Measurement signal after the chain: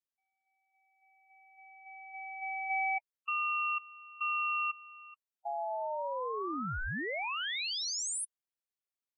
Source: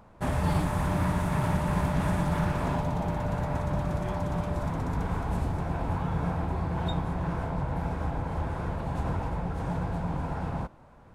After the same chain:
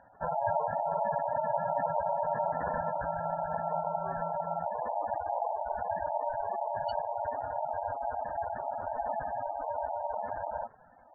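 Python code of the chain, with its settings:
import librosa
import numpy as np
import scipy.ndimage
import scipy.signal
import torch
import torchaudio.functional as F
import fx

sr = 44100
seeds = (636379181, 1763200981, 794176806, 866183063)

y = fx.spec_gate(x, sr, threshold_db=-10, keep='strong')
y = y * np.sin(2.0 * np.pi * 760.0 * np.arange(len(y)) / sr)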